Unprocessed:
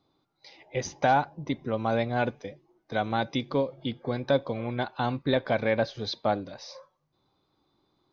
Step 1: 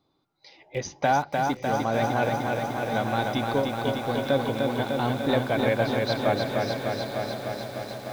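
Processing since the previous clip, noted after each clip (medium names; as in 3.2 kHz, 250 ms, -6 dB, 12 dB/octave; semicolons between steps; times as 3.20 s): echo that smears into a reverb 986 ms, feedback 43%, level -9 dB; bit-crushed delay 301 ms, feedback 80%, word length 8-bit, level -3.5 dB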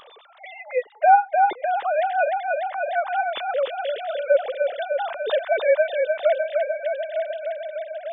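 formants replaced by sine waves; upward compressor, threshold -31 dBFS; trim +3.5 dB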